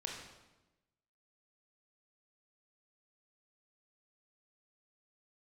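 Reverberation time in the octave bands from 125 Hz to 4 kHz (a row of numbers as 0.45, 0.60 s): 1.3, 1.2, 1.1, 1.0, 0.90, 0.85 s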